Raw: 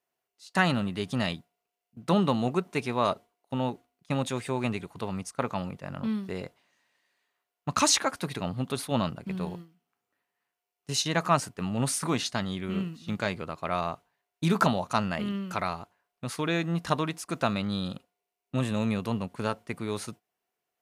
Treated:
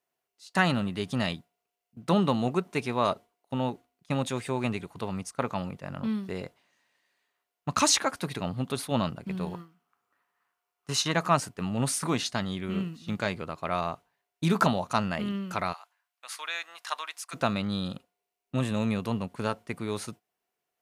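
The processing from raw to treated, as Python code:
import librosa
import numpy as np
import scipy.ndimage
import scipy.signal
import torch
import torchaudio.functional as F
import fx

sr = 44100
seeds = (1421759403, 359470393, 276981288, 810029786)

y = fx.peak_eq(x, sr, hz=1200.0, db=12.5, octaves=0.89, at=(9.53, 11.12))
y = fx.bessel_highpass(y, sr, hz=1200.0, order=4, at=(15.72, 17.33), fade=0.02)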